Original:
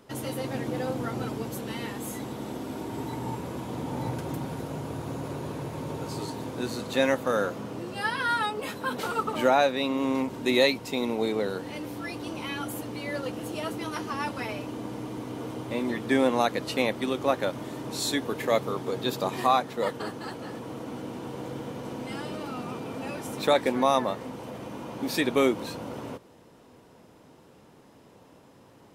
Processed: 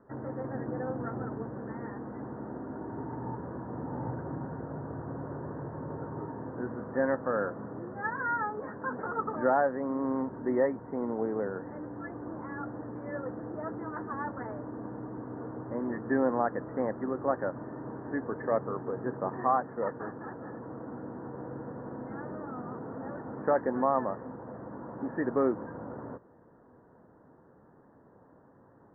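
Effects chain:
Butterworth low-pass 1,800 Hz 96 dB per octave
level −4 dB

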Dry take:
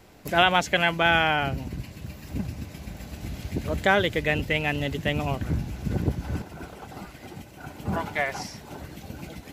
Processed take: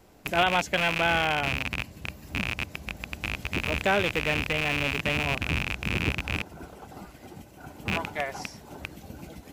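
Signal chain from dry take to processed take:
loose part that buzzes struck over −32 dBFS, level −9 dBFS
graphic EQ with 10 bands 125 Hz −3 dB, 2,000 Hz −4 dB, 4,000 Hz −3 dB
level −2.5 dB

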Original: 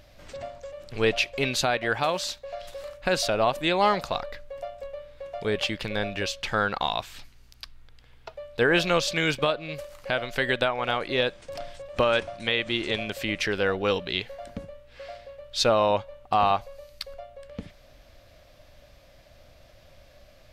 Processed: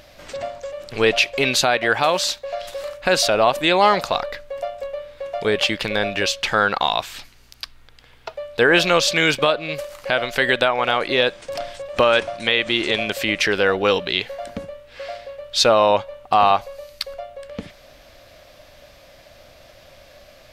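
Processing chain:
low-shelf EQ 180 Hz −10 dB
in parallel at −2 dB: brickwall limiter −18.5 dBFS, peak gain reduction 8.5 dB
on the sum: level +4.5 dB

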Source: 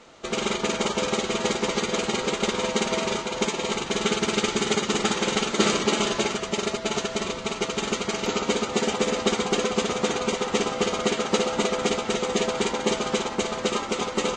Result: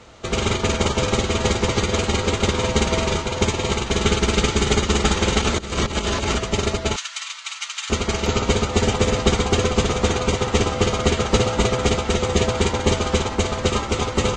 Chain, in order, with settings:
sub-octave generator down 2 octaves, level +4 dB
0:05.40–0:06.39: compressor whose output falls as the input rises −25 dBFS, ratio −0.5
0:06.96–0:07.90: Bessel high-pass filter 1,800 Hz, order 8
level +3.5 dB

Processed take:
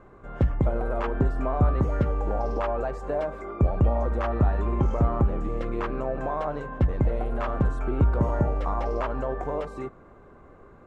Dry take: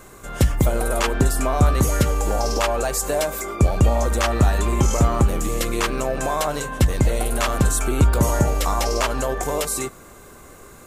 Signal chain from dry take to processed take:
low-pass filter 1,300 Hz 12 dB per octave
level −5 dB

